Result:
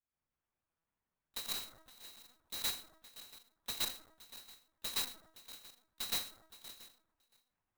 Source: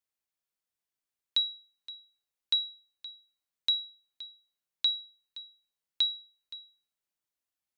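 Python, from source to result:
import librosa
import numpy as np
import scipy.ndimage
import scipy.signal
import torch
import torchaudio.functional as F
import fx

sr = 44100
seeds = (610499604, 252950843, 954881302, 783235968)

p1 = fx.notch(x, sr, hz=760.0, q=13.0)
p2 = fx.rev_plate(p1, sr, seeds[0], rt60_s=1.0, hf_ratio=0.3, predelay_ms=105, drr_db=-8.0)
p3 = fx.transient(p2, sr, attack_db=-5, sustain_db=5, at=(1.42, 2.62))
p4 = p3 + 10.0 ** (-20.0 / 20.0) * np.pad(p3, (int(682 * sr / 1000.0), 0))[:len(p3)]
p5 = fx.rider(p4, sr, range_db=4, speed_s=2.0)
p6 = p4 + F.gain(torch.from_numpy(p5), 2.0).numpy()
p7 = fx.high_shelf(p6, sr, hz=2300.0, db=-12.0)
p8 = fx.comb_fb(p7, sr, f0_hz=330.0, decay_s=0.23, harmonics='all', damping=0.0, mix_pct=80)
p9 = fx.lpc_vocoder(p8, sr, seeds[1], excitation='pitch_kept', order=8)
p10 = fx.clock_jitter(p9, sr, seeds[2], jitter_ms=0.04)
y = F.gain(torch.from_numpy(p10), 4.5).numpy()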